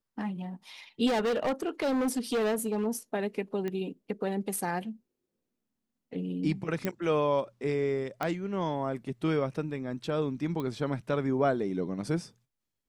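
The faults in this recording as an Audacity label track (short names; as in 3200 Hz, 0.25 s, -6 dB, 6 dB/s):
1.060000	2.870000	clipped -25 dBFS
3.680000	3.680000	pop -22 dBFS
6.850000	6.850000	pop -16 dBFS
8.230000	8.230000	pop -17 dBFS
10.600000	10.600000	pop -23 dBFS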